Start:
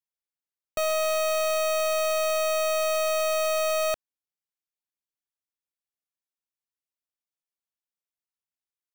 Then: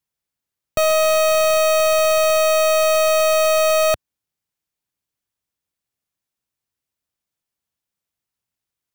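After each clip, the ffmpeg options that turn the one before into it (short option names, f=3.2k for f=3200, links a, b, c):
-af "equalizer=f=91:w=0.5:g=10,volume=8.5dB"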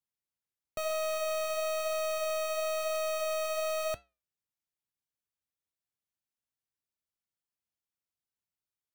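-af "asoftclip=type=tanh:threshold=-19.5dB,flanger=delay=7.7:depth=2.8:regen=-82:speed=1:shape=triangular,volume=-7dB"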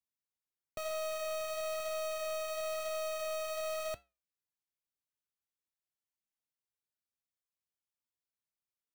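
-af "acrusher=bits=3:mode=log:mix=0:aa=0.000001,volume=-5.5dB"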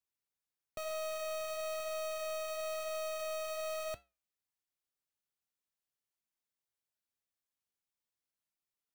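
-af "asoftclip=type=tanh:threshold=-34dB"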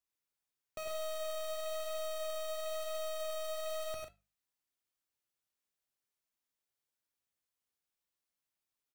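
-af "bandreject=f=50:t=h:w=6,bandreject=f=100:t=h:w=6,bandreject=f=150:t=h:w=6,bandreject=f=200:t=h:w=6,aecho=1:1:52|86|101|141:0.237|0.316|0.668|0.251,volume=-1dB"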